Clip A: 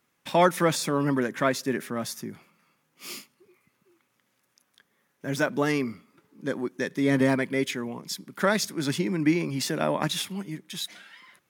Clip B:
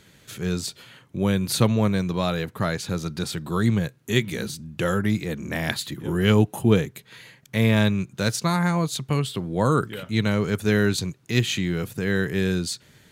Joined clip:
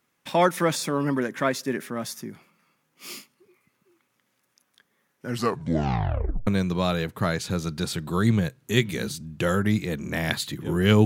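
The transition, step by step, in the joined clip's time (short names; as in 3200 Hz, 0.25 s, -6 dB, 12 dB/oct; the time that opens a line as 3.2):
clip A
5.16 tape stop 1.31 s
6.47 switch to clip B from 1.86 s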